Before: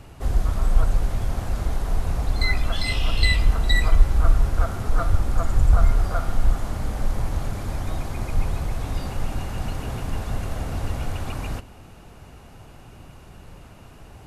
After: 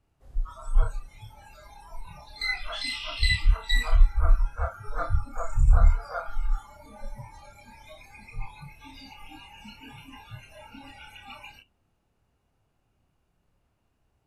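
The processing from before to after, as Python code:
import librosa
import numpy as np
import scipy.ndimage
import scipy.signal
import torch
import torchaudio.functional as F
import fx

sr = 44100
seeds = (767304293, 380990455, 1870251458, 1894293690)

y = fx.noise_reduce_blind(x, sr, reduce_db=25)
y = fx.doubler(y, sr, ms=29.0, db=-4)
y = F.gain(torch.from_numpy(y), -4.0).numpy()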